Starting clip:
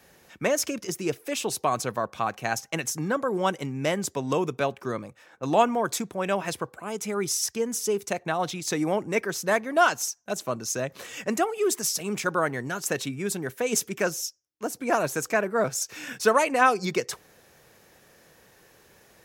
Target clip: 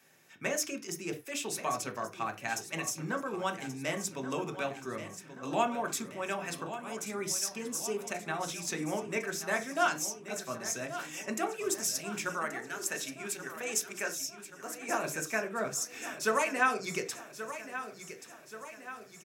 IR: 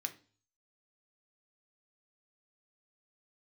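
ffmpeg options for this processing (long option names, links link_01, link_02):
-filter_complex "[0:a]asettb=1/sr,asplit=3[link_01][link_02][link_03];[link_01]atrim=end=12.324[link_04];[link_02]atrim=start=12.32:end=14.89,asetpts=PTS-STARTPTS,afade=type=in:duration=0.004:curve=qsin,afade=type=out:start_time=2.566:duration=0.004:curve=qsin,highpass=frequency=470:poles=1[link_05];[link_03]atrim=start=14.886[link_06];[link_04][link_05]acrossfade=duration=0.004:curve1=hsin:curve2=qsin[link_07];[link_07][link_06]acrossfade=duration=0.004:curve1=qsin:curve2=hsin,aecho=1:1:1130|2260|3390|4520|5650|6780:0.251|0.138|0.076|0.0418|0.023|0.0126[link_08];[1:a]atrim=start_sample=2205,afade=type=out:start_time=0.15:duration=0.01,atrim=end_sample=7056[link_09];[link_08][link_09]afir=irnorm=-1:irlink=0,volume=-5.5dB"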